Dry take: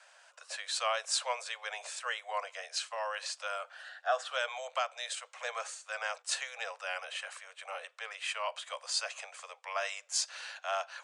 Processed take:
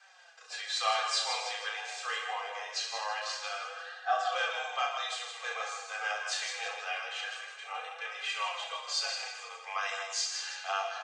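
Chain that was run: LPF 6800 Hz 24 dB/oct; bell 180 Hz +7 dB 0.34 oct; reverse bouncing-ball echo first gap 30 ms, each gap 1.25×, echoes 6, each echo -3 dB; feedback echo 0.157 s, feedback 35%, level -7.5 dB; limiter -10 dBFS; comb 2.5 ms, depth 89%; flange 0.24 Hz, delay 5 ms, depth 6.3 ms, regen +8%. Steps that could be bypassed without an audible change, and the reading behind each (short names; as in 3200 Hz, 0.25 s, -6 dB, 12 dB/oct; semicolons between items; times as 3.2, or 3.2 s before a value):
bell 180 Hz: input band starts at 430 Hz; limiter -10 dBFS: input peak -16.0 dBFS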